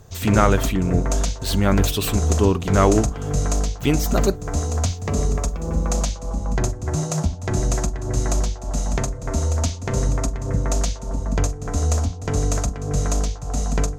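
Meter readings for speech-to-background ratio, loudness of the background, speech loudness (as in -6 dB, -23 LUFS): 2.5 dB, -24.0 LUFS, -21.5 LUFS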